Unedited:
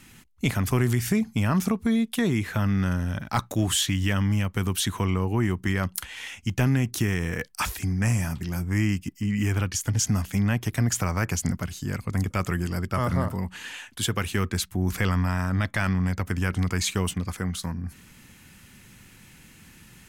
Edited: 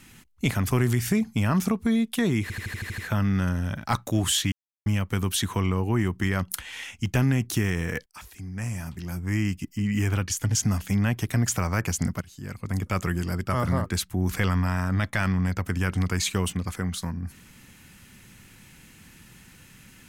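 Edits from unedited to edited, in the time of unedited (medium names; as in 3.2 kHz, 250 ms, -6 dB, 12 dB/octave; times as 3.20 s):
2.42 s: stutter 0.08 s, 8 plays
3.96–4.30 s: mute
7.50–9.18 s: fade in, from -22 dB
11.65–12.40 s: fade in, from -15 dB
13.30–14.47 s: delete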